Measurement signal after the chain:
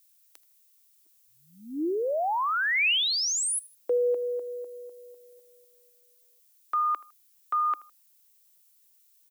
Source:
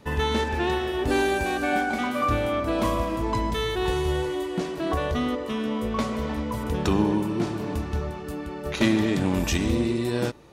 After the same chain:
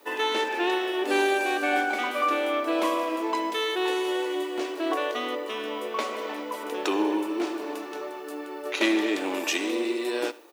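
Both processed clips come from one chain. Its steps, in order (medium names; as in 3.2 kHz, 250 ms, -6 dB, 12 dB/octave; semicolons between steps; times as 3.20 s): elliptic high-pass 310 Hz, stop band 70 dB; dynamic bell 2.6 kHz, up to +5 dB, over -47 dBFS, Q 1.8; added noise violet -63 dBFS; on a send: feedback delay 79 ms, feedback 32%, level -20.5 dB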